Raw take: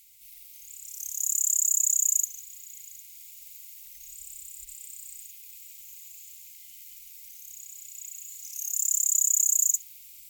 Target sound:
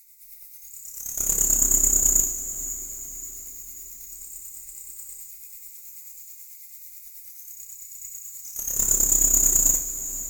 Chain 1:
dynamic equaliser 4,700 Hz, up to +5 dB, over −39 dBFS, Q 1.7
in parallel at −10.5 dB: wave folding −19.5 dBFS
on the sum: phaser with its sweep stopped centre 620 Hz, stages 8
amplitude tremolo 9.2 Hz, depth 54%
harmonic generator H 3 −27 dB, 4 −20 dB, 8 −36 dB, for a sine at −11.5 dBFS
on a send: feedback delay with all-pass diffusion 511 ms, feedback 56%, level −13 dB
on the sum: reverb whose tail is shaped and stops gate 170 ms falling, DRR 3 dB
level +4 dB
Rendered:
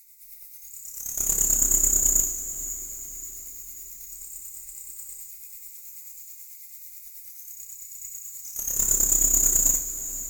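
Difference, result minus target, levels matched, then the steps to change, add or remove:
wave folding: distortion +18 dB
change: wave folding −13.5 dBFS

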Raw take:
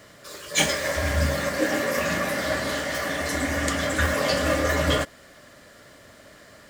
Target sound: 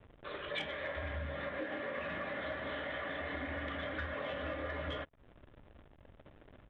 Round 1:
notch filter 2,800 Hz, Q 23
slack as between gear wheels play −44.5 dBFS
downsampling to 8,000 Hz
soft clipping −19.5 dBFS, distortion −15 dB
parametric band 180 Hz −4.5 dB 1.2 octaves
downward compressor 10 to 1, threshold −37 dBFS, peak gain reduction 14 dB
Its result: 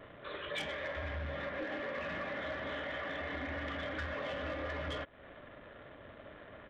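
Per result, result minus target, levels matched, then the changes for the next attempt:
soft clipping: distortion +12 dB; slack as between gear wheels: distortion −7 dB
change: soft clipping −11 dBFS, distortion −26 dB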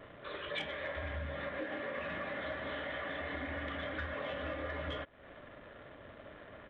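slack as between gear wheels: distortion −7 dB
change: slack as between gear wheels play −37 dBFS

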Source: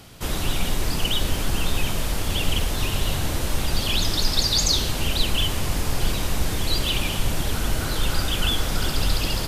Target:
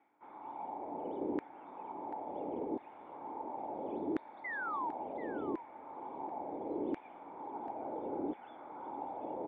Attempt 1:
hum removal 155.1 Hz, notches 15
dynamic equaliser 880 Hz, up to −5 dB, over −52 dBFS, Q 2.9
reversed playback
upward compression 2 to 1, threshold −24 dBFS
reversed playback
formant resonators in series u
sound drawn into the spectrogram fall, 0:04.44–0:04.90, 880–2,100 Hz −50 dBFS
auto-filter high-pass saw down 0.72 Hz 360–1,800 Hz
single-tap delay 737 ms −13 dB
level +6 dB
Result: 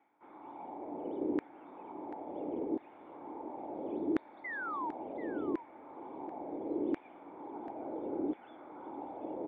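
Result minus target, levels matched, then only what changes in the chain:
1,000 Hz band −4.5 dB
change: dynamic equaliser 320 Hz, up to −5 dB, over −52 dBFS, Q 2.9

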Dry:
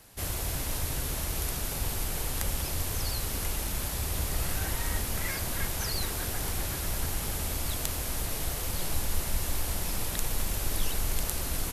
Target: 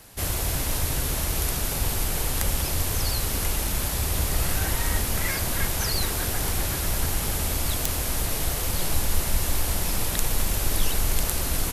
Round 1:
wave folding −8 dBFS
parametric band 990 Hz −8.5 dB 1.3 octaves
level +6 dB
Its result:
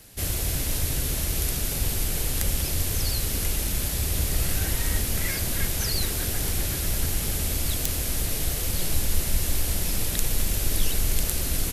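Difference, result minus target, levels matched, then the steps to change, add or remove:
1,000 Hz band −6.5 dB
remove: parametric band 990 Hz −8.5 dB 1.3 octaves

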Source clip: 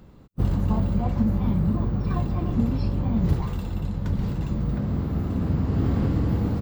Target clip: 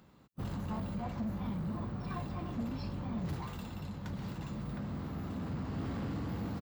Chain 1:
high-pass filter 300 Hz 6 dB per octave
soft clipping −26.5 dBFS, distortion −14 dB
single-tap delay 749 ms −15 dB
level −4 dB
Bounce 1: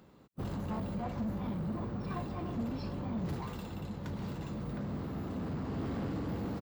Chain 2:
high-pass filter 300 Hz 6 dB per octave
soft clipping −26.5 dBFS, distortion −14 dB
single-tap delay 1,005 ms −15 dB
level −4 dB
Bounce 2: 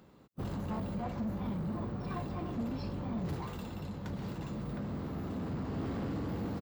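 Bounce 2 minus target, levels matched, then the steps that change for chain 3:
500 Hz band +3.0 dB
add after high-pass filter: parametric band 430 Hz −6 dB 1.3 octaves

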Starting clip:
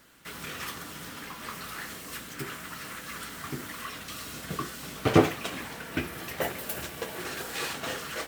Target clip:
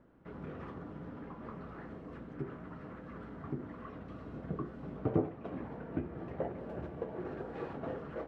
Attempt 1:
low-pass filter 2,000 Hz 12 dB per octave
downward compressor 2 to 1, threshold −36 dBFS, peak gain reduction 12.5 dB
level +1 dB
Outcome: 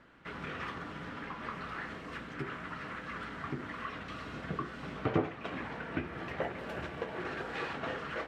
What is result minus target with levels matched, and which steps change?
2,000 Hz band +12.0 dB
change: low-pass filter 640 Hz 12 dB per octave

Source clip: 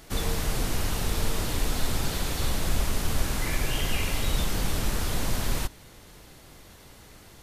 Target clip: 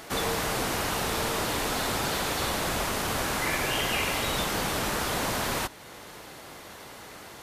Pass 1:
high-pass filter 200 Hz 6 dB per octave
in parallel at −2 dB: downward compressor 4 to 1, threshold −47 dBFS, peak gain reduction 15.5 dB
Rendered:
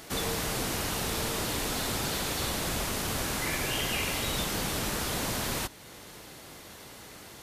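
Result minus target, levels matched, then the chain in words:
1,000 Hz band −3.5 dB
high-pass filter 200 Hz 6 dB per octave
parametric band 1,000 Hz +6.5 dB 2.8 octaves
in parallel at −2 dB: downward compressor 4 to 1, threshold −47 dBFS, peak gain reduction 18 dB

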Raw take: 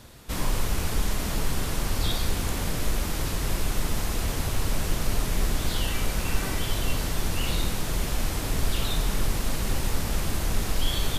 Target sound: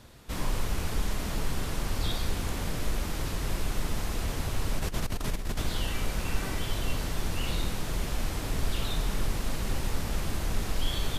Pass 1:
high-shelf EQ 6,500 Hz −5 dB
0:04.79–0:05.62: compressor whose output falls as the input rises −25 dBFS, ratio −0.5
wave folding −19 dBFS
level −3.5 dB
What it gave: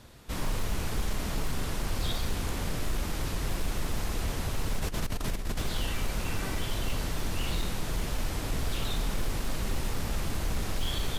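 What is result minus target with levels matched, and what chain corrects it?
wave folding: distortion +40 dB
high-shelf EQ 6,500 Hz −5 dB
0:04.79–0:05.62: compressor whose output falls as the input rises −25 dBFS, ratio −0.5
wave folding −11.5 dBFS
level −3.5 dB

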